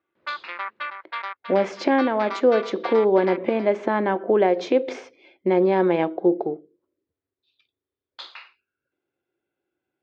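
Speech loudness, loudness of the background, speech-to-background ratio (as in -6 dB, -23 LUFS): -21.5 LUFS, -34.0 LUFS, 12.5 dB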